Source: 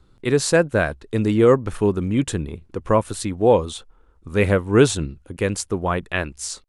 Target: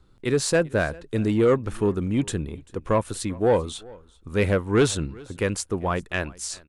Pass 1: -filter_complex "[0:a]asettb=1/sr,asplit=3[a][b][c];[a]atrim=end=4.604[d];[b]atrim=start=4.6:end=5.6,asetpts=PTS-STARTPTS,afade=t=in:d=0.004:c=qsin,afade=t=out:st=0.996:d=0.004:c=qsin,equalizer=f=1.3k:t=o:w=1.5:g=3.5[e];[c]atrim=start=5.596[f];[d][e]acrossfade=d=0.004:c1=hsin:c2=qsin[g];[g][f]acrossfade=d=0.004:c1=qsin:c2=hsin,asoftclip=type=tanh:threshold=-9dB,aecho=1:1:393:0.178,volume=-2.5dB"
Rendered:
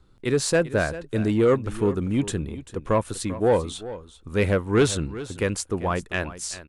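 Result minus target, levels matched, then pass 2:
echo-to-direct +8.5 dB
-filter_complex "[0:a]asettb=1/sr,asplit=3[a][b][c];[a]atrim=end=4.604[d];[b]atrim=start=4.6:end=5.6,asetpts=PTS-STARTPTS,afade=t=in:d=0.004:c=qsin,afade=t=out:st=0.996:d=0.004:c=qsin,equalizer=f=1.3k:t=o:w=1.5:g=3.5[e];[c]atrim=start=5.596[f];[d][e]acrossfade=d=0.004:c1=hsin:c2=qsin[g];[g][f]acrossfade=d=0.004:c1=qsin:c2=hsin,asoftclip=type=tanh:threshold=-9dB,aecho=1:1:393:0.0668,volume=-2.5dB"

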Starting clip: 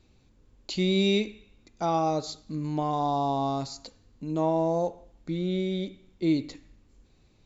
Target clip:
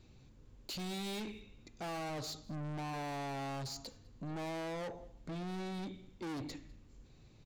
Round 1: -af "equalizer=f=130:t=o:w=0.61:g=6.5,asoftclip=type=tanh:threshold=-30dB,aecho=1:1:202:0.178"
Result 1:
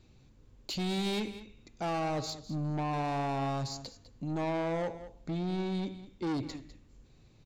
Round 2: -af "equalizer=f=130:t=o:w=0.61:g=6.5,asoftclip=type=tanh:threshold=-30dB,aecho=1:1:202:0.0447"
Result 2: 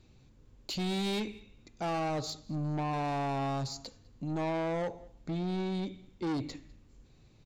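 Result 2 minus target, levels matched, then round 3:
soft clip: distortion -4 dB
-af "equalizer=f=130:t=o:w=0.61:g=6.5,asoftclip=type=tanh:threshold=-39.5dB,aecho=1:1:202:0.0447"

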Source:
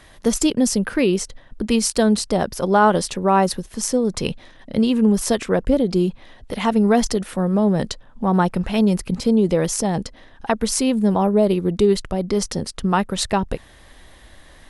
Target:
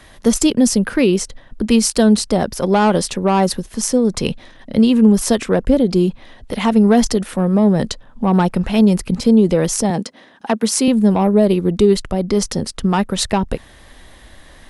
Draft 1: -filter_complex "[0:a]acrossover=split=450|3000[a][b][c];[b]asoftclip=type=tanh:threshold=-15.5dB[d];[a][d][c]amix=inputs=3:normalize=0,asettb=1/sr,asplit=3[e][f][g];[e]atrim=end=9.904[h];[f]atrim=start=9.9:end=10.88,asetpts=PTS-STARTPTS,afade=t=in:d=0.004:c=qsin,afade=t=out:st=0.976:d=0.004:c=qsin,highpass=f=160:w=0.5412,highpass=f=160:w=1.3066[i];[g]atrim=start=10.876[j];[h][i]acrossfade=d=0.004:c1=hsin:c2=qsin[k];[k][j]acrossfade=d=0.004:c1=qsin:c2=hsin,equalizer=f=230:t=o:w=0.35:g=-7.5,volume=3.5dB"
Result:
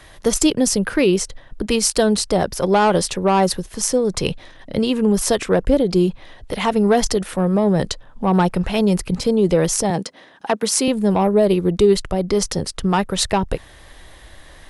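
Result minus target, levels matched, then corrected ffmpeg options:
250 Hz band -2.5 dB
-filter_complex "[0:a]acrossover=split=450|3000[a][b][c];[b]asoftclip=type=tanh:threshold=-15.5dB[d];[a][d][c]amix=inputs=3:normalize=0,asettb=1/sr,asplit=3[e][f][g];[e]atrim=end=9.904[h];[f]atrim=start=9.9:end=10.88,asetpts=PTS-STARTPTS,afade=t=in:d=0.004:c=qsin,afade=t=out:st=0.976:d=0.004:c=qsin,highpass=f=160:w=0.5412,highpass=f=160:w=1.3066[i];[g]atrim=start=10.876[j];[h][i]acrossfade=d=0.004:c1=hsin:c2=qsin[k];[k][j]acrossfade=d=0.004:c1=qsin:c2=hsin,equalizer=f=230:t=o:w=0.35:g=2.5,volume=3.5dB"

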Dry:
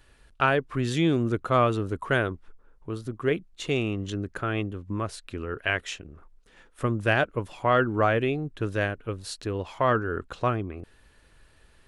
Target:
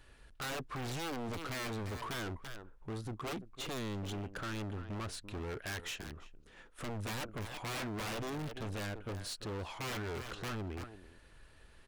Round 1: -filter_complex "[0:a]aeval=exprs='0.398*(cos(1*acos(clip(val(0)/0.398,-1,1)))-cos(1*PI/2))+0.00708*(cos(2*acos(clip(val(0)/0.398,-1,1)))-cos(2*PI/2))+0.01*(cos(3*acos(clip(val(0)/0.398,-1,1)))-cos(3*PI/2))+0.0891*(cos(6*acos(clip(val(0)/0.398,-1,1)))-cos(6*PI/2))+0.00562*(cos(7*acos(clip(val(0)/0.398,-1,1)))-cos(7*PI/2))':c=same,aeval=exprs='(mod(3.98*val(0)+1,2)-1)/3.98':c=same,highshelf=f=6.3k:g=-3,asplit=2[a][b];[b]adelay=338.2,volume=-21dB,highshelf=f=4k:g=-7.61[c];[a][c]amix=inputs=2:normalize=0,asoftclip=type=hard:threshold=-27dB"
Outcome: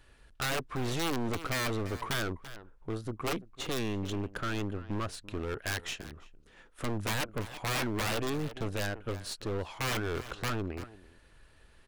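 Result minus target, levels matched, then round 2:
hard clip: distortion -6 dB
-filter_complex "[0:a]aeval=exprs='0.398*(cos(1*acos(clip(val(0)/0.398,-1,1)))-cos(1*PI/2))+0.00708*(cos(2*acos(clip(val(0)/0.398,-1,1)))-cos(2*PI/2))+0.01*(cos(3*acos(clip(val(0)/0.398,-1,1)))-cos(3*PI/2))+0.0891*(cos(6*acos(clip(val(0)/0.398,-1,1)))-cos(6*PI/2))+0.00562*(cos(7*acos(clip(val(0)/0.398,-1,1)))-cos(7*PI/2))':c=same,aeval=exprs='(mod(3.98*val(0)+1,2)-1)/3.98':c=same,highshelf=f=6.3k:g=-3,asplit=2[a][b];[b]adelay=338.2,volume=-21dB,highshelf=f=4k:g=-7.61[c];[a][c]amix=inputs=2:normalize=0,asoftclip=type=hard:threshold=-37.5dB"

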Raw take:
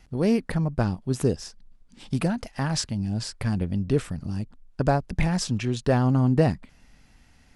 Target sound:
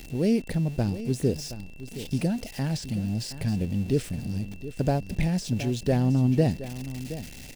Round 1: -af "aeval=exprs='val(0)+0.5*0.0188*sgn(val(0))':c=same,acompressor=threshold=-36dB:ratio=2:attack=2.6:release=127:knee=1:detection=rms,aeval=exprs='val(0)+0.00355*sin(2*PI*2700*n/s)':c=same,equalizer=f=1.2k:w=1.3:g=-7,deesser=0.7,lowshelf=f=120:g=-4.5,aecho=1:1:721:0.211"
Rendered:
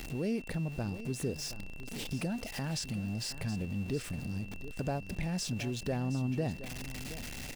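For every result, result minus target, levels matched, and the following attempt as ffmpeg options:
compressor: peak gain reduction +13.5 dB; 1000 Hz band +2.5 dB
-af "aeval=exprs='val(0)+0.5*0.0188*sgn(val(0))':c=same,aeval=exprs='val(0)+0.00355*sin(2*PI*2700*n/s)':c=same,equalizer=f=1.2k:w=1.3:g=-7,deesser=0.7,lowshelf=f=120:g=-4.5,aecho=1:1:721:0.211"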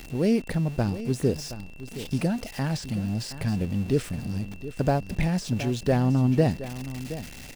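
1000 Hz band +3.5 dB
-af "aeval=exprs='val(0)+0.5*0.0188*sgn(val(0))':c=same,aeval=exprs='val(0)+0.00355*sin(2*PI*2700*n/s)':c=same,equalizer=f=1.2k:w=1.3:g=-16,deesser=0.7,lowshelf=f=120:g=-4.5,aecho=1:1:721:0.211"

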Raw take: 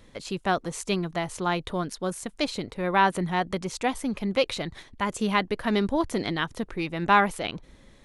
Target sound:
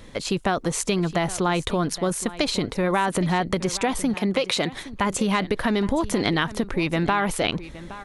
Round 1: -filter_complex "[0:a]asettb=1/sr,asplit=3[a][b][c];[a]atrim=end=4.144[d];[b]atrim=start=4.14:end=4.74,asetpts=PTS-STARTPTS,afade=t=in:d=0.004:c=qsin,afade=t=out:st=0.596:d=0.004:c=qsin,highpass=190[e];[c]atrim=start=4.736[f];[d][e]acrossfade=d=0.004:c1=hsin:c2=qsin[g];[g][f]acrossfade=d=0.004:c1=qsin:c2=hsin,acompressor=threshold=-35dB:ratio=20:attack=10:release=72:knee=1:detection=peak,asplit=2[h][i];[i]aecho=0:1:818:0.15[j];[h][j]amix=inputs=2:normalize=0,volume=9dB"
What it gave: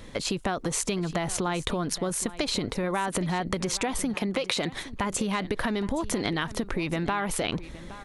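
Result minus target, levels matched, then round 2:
compressor: peak gain reduction +6 dB
-filter_complex "[0:a]asettb=1/sr,asplit=3[a][b][c];[a]atrim=end=4.144[d];[b]atrim=start=4.14:end=4.74,asetpts=PTS-STARTPTS,afade=t=in:d=0.004:c=qsin,afade=t=out:st=0.596:d=0.004:c=qsin,highpass=190[e];[c]atrim=start=4.736[f];[d][e]acrossfade=d=0.004:c1=hsin:c2=qsin[g];[g][f]acrossfade=d=0.004:c1=qsin:c2=hsin,acompressor=threshold=-28.5dB:ratio=20:attack=10:release=72:knee=1:detection=peak,asplit=2[h][i];[i]aecho=0:1:818:0.15[j];[h][j]amix=inputs=2:normalize=0,volume=9dB"

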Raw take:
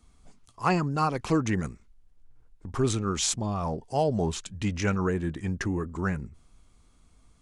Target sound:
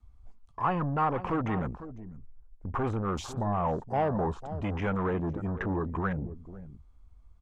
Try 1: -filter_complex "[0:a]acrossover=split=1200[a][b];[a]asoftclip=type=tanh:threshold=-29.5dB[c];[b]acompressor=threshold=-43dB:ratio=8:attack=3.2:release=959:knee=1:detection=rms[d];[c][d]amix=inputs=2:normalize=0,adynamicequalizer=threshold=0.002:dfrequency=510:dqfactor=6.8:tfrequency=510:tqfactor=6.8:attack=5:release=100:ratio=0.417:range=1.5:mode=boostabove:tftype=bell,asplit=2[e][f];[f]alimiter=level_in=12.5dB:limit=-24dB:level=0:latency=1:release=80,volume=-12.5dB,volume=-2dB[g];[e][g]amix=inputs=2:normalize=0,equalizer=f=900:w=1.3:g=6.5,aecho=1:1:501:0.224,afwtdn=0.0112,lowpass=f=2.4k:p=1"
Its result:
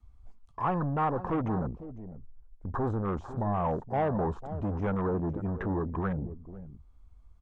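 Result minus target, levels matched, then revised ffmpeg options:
compressor: peak gain reduction +9.5 dB
-filter_complex "[0:a]acrossover=split=1200[a][b];[a]asoftclip=type=tanh:threshold=-29.5dB[c];[b]acompressor=threshold=-32dB:ratio=8:attack=3.2:release=959:knee=1:detection=rms[d];[c][d]amix=inputs=2:normalize=0,adynamicequalizer=threshold=0.002:dfrequency=510:dqfactor=6.8:tfrequency=510:tqfactor=6.8:attack=5:release=100:ratio=0.417:range=1.5:mode=boostabove:tftype=bell,asplit=2[e][f];[f]alimiter=level_in=12.5dB:limit=-24dB:level=0:latency=1:release=80,volume=-12.5dB,volume=-2dB[g];[e][g]amix=inputs=2:normalize=0,equalizer=f=900:w=1.3:g=6.5,aecho=1:1:501:0.224,afwtdn=0.0112,lowpass=f=2.4k:p=1"

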